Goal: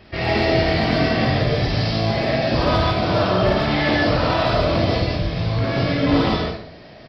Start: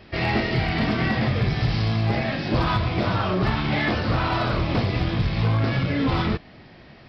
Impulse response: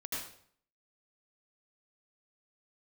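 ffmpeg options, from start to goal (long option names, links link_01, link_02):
-filter_complex "[0:a]asettb=1/sr,asplit=3[link_01][link_02][link_03];[link_01]atrim=end=5.004[link_04];[link_02]atrim=start=5:end=5.59,asetpts=PTS-STARTPTS,afade=type=in:duration=0.004:curve=qsin,afade=type=out:start_time=0.586:duration=0.004:curve=qsin,acrossover=split=160[link_05][link_06];[link_06]acompressor=threshold=-30dB:ratio=6[link_07];[link_05][link_07]amix=inputs=2:normalize=0[link_08];[link_03]atrim=start=5.586[link_09];[link_04][link_08]acrossfade=duration=0.004:curve1=hsin:curve2=qsin[link_10];[link_10][link_09]acrossfade=duration=0.004:curve1=qsin:curve2=hsin,asplit=2[link_11][link_12];[link_12]firequalizer=gain_entry='entry(220,0);entry(600,13);entry(960,2);entry(2300,2);entry(4600,11);entry(7800,8)':delay=0.05:min_phase=1[link_13];[1:a]atrim=start_sample=2205,adelay=51[link_14];[link_13][link_14]afir=irnorm=-1:irlink=0,volume=-4dB[link_15];[link_11][link_15]amix=inputs=2:normalize=0"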